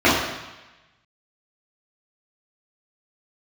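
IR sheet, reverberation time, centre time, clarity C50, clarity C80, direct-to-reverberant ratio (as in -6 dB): 1.1 s, 66 ms, 1.0 dB, 4.0 dB, -10.5 dB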